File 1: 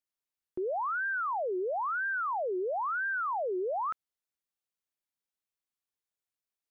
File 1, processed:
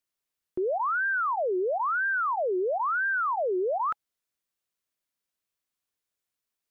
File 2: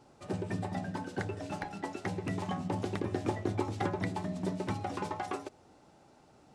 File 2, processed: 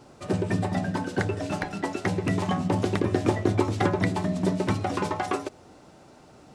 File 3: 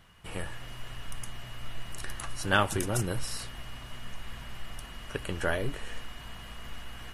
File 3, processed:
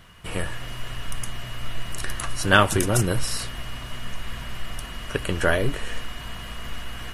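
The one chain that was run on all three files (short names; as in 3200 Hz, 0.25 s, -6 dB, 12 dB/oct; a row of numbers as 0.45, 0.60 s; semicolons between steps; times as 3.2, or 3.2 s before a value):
notch 830 Hz, Q 12; match loudness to -27 LUFS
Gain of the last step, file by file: +5.0, +9.5, +8.5 dB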